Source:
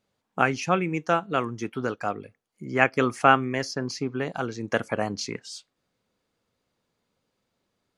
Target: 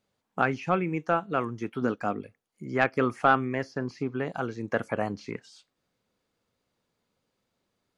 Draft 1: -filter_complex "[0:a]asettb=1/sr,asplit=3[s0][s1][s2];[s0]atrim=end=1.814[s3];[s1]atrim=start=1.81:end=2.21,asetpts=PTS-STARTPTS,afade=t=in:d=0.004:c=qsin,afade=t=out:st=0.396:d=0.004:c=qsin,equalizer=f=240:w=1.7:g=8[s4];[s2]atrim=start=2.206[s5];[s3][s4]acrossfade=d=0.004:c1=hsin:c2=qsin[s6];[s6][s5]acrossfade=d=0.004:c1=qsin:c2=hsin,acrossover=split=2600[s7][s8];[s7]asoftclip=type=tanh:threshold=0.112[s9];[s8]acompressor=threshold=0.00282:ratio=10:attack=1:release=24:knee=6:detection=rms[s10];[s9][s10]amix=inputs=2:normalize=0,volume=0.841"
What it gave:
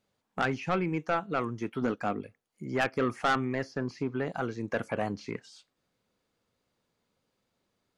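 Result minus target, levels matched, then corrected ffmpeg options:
saturation: distortion +11 dB
-filter_complex "[0:a]asettb=1/sr,asplit=3[s0][s1][s2];[s0]atrim=end=1.814[s3];[s1]atrim=start=1.81:end=2.21,asetpts=PTS-STARTPTS,afade=t=in:d=0.004:c=qsin,afade=t=out:st=0.396:d=0.004:c=qsin,equalizer=f=240:w=1.7:g=8[s4];[s2]atrim=start=2.206[s5];[s3][s4]acrossfade=d=0.004:c1=hsin:c2=qsin[s6];[s6][s5]acrossfade=d=0.004:c1=qsin:c2=hsin,acrossover=split=2600[s7][s8];[s7]asoftclip=type=tanh:threshold=0.422[s9];[s8]acompressor=threshold=0.00282:ratio=10:attack=1:release=24:knee=6:detection=rms[s10];[s9][s10]amix=inputs=2:normalize=0,volume=0.841"

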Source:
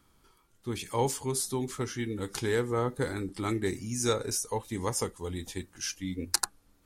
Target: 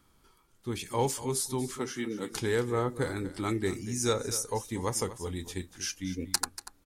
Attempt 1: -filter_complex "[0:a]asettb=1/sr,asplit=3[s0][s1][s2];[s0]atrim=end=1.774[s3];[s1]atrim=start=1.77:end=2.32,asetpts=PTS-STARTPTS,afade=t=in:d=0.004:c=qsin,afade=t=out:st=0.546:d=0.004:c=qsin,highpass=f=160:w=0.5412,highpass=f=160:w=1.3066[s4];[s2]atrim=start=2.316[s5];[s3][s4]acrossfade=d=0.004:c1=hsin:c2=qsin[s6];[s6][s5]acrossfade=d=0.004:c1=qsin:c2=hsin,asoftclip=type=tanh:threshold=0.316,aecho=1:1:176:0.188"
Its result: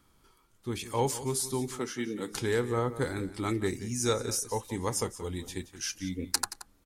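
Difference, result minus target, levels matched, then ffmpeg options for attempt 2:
echo 62 ms early
-filter_complex "[0:a]asettb=1/sr,asplit=3[s0][s1][s2];[s0]atrim=end=1.774[s3];[s1]atrim=start=1.77:end=2.32,asetpts=PTS-STARTPTS,afade=t=in:d=0.004:c=qsin,afade=t=out:st=0.546:d=0.004:c=qsin,highpass=f=160:w=0.5412,highpass=f=160:w=1.3066[s4];[s2]atrim=start=2.316[s5];[s3][s4]acrossfade=d=0.004:c1=hsin:c2=qsin[s6];[s6][s5]acrossfade=d=0.004:c1=qsin:c2=hsin,asoftclip=type=tanh:threshold=0.316,aecho=1:1:238:0.188"

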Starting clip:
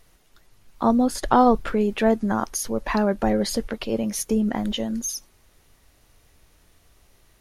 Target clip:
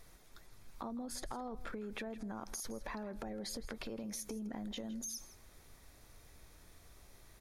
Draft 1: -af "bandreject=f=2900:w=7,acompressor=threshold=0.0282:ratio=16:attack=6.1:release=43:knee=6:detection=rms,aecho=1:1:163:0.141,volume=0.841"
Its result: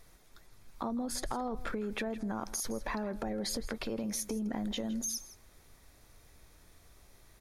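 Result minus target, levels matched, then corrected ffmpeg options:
compression: peak gain reduction -7.5 dB
-af "bandreject=f=2900:w=7,acompressor=threshold=0.0112:ratio=16:attack=6.1:release=43:knee=6:detection=rms,aecho=1:1:163:0.141,volume=0.841"

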